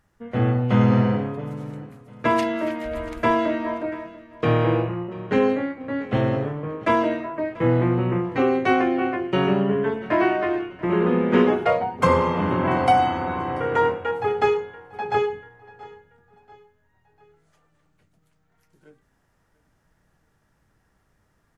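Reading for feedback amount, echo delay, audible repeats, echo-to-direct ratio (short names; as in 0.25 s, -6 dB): 41%, 0.687 s, 2, -19.0 dB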